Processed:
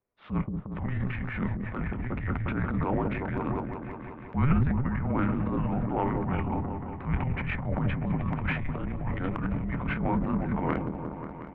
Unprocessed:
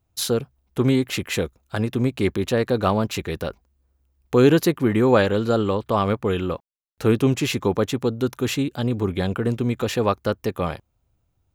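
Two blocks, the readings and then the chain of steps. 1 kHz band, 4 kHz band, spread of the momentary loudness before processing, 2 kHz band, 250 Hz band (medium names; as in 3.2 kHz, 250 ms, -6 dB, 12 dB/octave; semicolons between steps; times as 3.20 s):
-5.5 dB, under -20 dB, 10 LU, -5.5 dB, -7.0 dB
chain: gain riding within 5 dB 0.5 s; mistuned SSB -280 Hz 330–2400 Hz; doubling 25 ms -9.5 dB; delay with an opening low-pass 179 ms, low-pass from 400 Hz, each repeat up 1 oct, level -6 dB; transient shaper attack -9 dB, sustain +10 dB; trim -6.5 dB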